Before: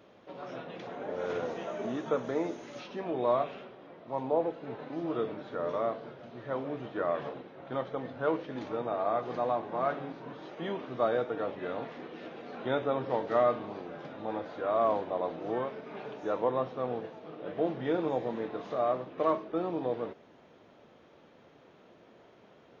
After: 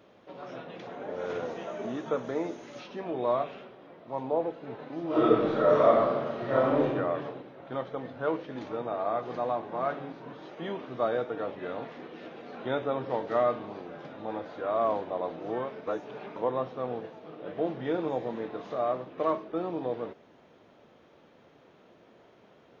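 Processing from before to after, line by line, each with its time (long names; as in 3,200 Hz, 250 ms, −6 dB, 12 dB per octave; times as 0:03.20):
0:05.07–0:06.85: thrown reverb, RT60 1.3 s, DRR −10.5 dB
0:15.87–0:16.36: reverse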